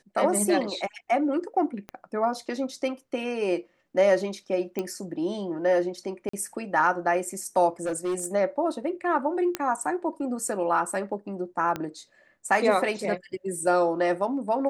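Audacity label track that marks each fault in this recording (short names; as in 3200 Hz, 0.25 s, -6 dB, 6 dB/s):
1.890000	1.890000	pop -23 dBFS
4.790000	4.790000	pop -16 dBFS
6.290000	6.330000	gap 44 ms
7.830000	8.260000	clipped -24 dBFS
9.550000	9.550000	pop -11 dBFS
11.760000	11.760000	pop -16 dBFS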